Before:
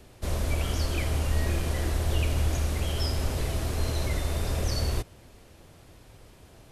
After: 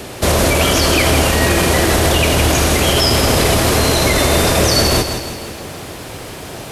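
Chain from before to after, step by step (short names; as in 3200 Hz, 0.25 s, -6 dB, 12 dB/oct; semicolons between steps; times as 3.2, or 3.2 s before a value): HPF 220 Hz 6 dB/oct; maximiser +29 dB; lo-fi delay 0.163 s, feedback 55%, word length 7-bit, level -8 dB; gain -3.5 dB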